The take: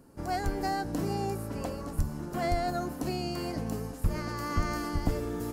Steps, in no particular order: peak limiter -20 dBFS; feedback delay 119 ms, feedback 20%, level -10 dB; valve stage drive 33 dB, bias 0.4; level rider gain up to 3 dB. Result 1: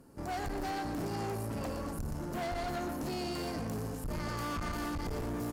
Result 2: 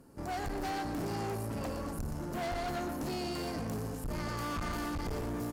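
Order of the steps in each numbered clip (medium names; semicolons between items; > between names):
feedback delay > level rider > peak limiter > valve stage; peak limiter > level rider > feedback delay > valve stage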